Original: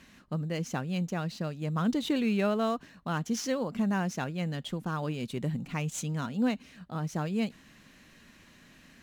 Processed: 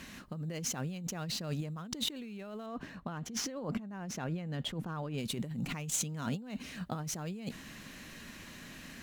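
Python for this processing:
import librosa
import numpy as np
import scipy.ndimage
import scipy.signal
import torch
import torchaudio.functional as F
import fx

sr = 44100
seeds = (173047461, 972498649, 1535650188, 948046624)

y = fx.high_shelf(x, sr, hz=3700.0, db=-12.0, at=(2.66, 5.18))
y = fx.over_compress(y, sr, threshold_db=-39.0, ratio=-1.0)
y = fx.high_shelf(y, sr, hz=8200.0, db=5.5)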